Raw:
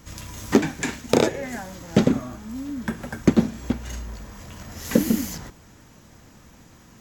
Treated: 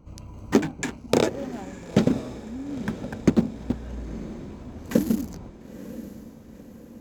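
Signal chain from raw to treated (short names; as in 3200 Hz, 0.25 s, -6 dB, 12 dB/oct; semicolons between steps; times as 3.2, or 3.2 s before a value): Wiener smoothing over 25 samples; diffused feedback echo 0.944 s, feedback 52%, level -14 dB; gain -2 dB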